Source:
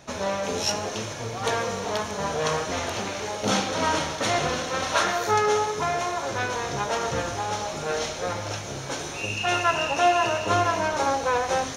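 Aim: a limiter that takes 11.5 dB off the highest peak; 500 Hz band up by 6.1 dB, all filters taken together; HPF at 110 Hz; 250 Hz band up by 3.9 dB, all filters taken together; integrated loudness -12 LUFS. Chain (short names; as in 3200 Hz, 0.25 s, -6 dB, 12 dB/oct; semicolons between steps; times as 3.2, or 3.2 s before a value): HPF 110 Hz; bell 250 Hz +3 dB; bell 500 Hz +7 dB; gain +13.5 dB; limiter -3 dBFS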